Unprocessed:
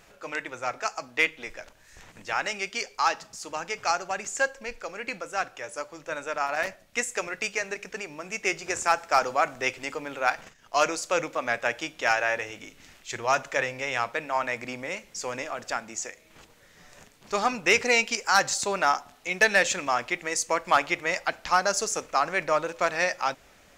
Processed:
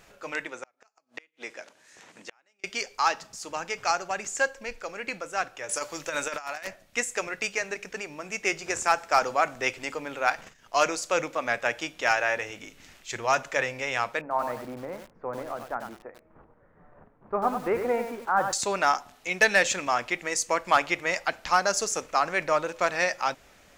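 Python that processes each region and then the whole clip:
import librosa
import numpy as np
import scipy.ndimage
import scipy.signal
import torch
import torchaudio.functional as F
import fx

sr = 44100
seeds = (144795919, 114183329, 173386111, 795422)

y = fx.chain(x, sr, fx.cheby1_bandpass(low_hz=260.0, high_hz=9200.0, order=2),
    fx.gate_flip(shuts_db=-24.0, range_db=-37), at=(0.47, 2.64))
y = fx.chain(y, sr, fx.peak_eq(hz=14000.0, db=10.0, octaves=3.0),
    fx.over_compress(threshold_db=-31.0, ratio=-0.5), at=(5.69, 6.67))
y = fx.chain(y, sr, fx.lowpass(hz=1300.0, slope=24),
    fx.echo_crushed(ms=95, feedback_pct=35, bits=7, wet_db=-6.5), at=(14.21, 18.53))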